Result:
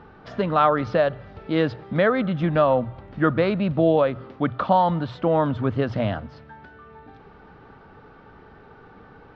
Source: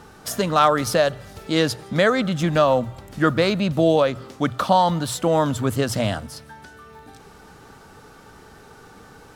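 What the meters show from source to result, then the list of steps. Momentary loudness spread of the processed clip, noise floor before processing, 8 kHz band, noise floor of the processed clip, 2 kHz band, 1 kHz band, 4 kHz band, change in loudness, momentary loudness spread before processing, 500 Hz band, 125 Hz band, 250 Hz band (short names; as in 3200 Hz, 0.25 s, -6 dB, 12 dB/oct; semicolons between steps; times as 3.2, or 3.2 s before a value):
8 LU, -47 dBFS, under -30 dB, -49 dBFS, -3.5 dB, -1.5 dB, -10.5 dB, -1.5 dB, 9 LU, -1.0 dB, -1.0 dB, -1.0 dB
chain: Gaussian blur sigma 2.9 samples; gain -1 dB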